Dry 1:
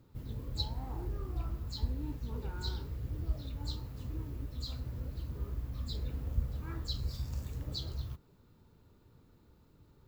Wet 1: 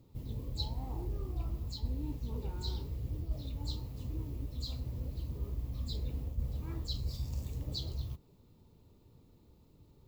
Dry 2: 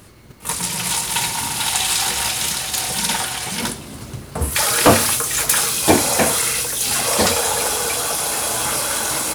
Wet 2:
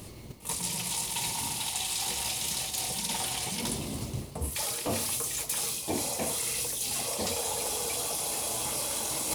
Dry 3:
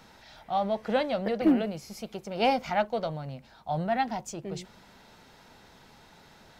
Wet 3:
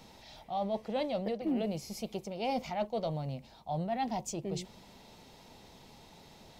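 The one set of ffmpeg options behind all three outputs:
-af "equalizer=f=1.5k:w=2.2:g=-13,areverse,acompressor=threshold=-31dB:ratio=6,areverse,volume=1dB"

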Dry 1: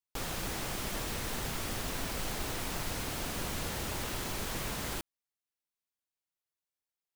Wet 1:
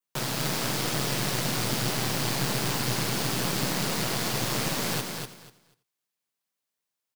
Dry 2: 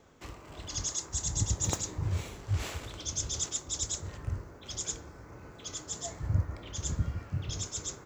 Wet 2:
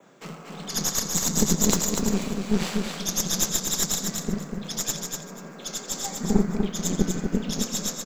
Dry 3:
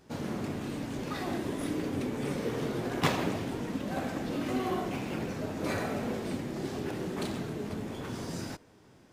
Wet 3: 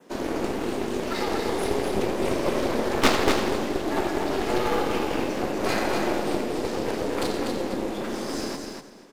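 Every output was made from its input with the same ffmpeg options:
-filter_complex "[0:a]adynamicequalizer=threshold=0.00224:dfrequency=4600:dqfactor=2.6:tfrequency=4600:tqfactor=2.6:attack=5:release=100:ratio=0.375:range=2.5:mode=boostabove:tftype=bell,afreqshift=110,asplit=2[a][b];[b]aecho=0:1:85:0.211[c];[a][c]amix=inputs=2:normalize=0,aeval=exprs='0.251*(cos(1*acos(clip(val(0)/0.251,-1,1)))-cos(1*PI/2))+0.0631*(cos(4*acos(clip(val(0)/0.251,-1,1)))-cos(4*PI/2))+0.0126*(cos(8*acos(clip(val(0)/0.251,-1,1)))-cos(8*PI/2))':c=same,asplit=2[d][e];[e]aecho=0:1:244|488|732:0.562|0.107|0.0203[f];[d][f]amix=inputs=2:normalize=0,volume=5.5dB"

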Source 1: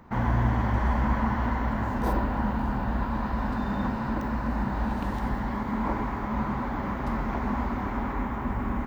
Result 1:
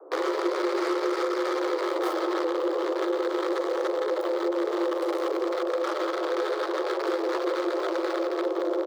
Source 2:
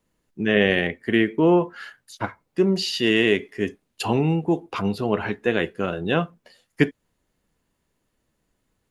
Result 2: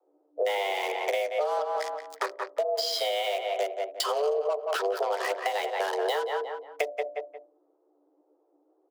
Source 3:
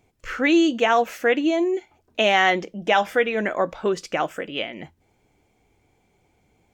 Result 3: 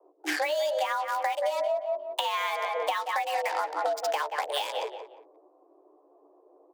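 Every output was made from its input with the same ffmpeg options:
-filter_complex "[0:a]asplit=2[a][b];[b]adelay=13,volume=-6dB[c];[a][c]amix=inputs=2:normalize=0,acrossover=split=200|730[d][e][f];[f]acrusher=bits=4:mix=0:aa=0.5[g];[d][e][g]amix=inputs=3:normalize=0,adynamicequalizer=threshold=0.00355:dfrequency=4400:dqfactor=4.5:tfrequency=4400:tqfactor=4.5:attack=5:release=100:ratio=0.375:range=2.5:mode=boostabove:tftype=bell,bandreject=f=60:t=h:w=6,bandreject=f=120:t=h:w=6,bandreject=f=180:t=h:w=6,bandreject=f=240:t=h:w=6,bandreject=f=300:t=h:w=6,bandreject=f=360:t=h:w=6,bandreject=f=420:t=h:w=6,asplit=2[h][i];[i]adelay=177,lowpass=f=2.2k:p=1,volume=-10dB,asplit=2[j][k];[k]adelay=177,lowpass=f=2.2k:p=1,volume=0.31,asplit=2[l][m];[m]adelay=177,lowpass=f=2.2k:p=1,volume=0.31[n];[h][j][l][n]amix=inputs=4:normalize=0,acompressor=threshold=-26dB:ratio=6,afreqshift=290,acrossover=split=380[o][p];[p]acompressor=threshold=-31dB:ratio=6[q];[o][q]amix=inputs=2:normalize=0,equalizer=f=2.6k:w=3.8:g=-3,volume=5dB"

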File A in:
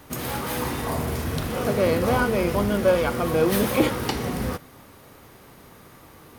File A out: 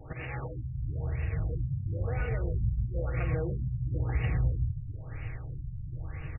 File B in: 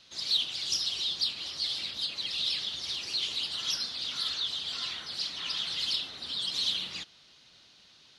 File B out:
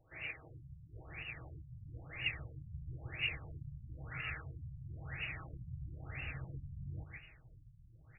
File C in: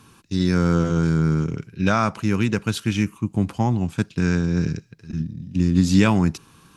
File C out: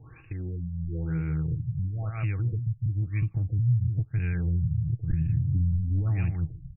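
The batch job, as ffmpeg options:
-filter_complex "[0:a]bandreject=f=1k:w=5.6,asplit=2[a][b];[b]acontrast=52,volume=-1.5dB[c];[a][c]amix=inputs=2:normalize=0,firequalizer=gain_entry='entry(120,0);entry(190,-21);entry(320,-11);entry(450,-9);entry(1200,-10);entry(1700,-6);entry(2600,-16);entry(3800,-12);entry(6300,-14);entry(11000,0)':delay=0.05:min_phase=1,asplit=2[d][e];[e]aecho=0:1:153:0.355[f];[d][f]amix=inputs=2:normalize=0,acompressor=threshold=-29dB:ratio=4,alimiter=level_in=1.5dB:limit=-24dB:level=0:latency=1:release=182,volume=-1.5dB,aexciter=amount=7.9:drive=5.5:freq=2.2k,aecho=1:1:6.3:0.38,asubboost=boost=4:cutoff=180,afftfilt=real='re*lt(b*sr/1024,200*pow(2900/200,0.5+0.5*sin(2*PI*1*pts/sr)))':imag='im*lt(b*sr/1024,200*pow(2900/200,0.5+0.5*sin(2*PI*1*pts/sr)))':win_size=1024:overlap=0.75"

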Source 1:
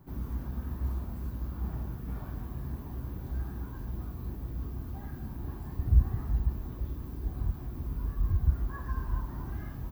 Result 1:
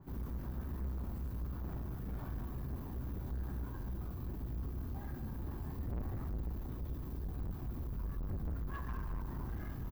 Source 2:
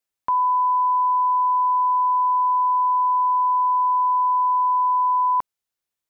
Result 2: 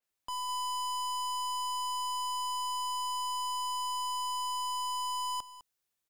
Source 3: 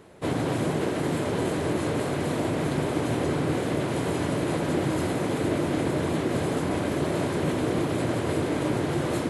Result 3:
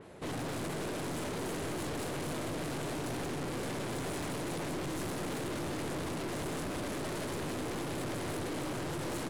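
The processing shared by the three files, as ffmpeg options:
-filter_complex "[0:a]aeval=exprs='(tanh(63.1*val(0)+0.25)-tanh(0.25))/63.1':c=same,asplit=2[a][b];[b]aecho=0:1:205:0.2[c];[a][c]amix=inputs=2:normalize=0,adynamicequalizer=threshold=0.00316:dfrequency=4400:dqfactor=0.7:tfrequency=4400:tqfactor=0.7:attack=5:release=100:ratio=0.375:range=2.5:mode=boostabove:tftype=highshelf"

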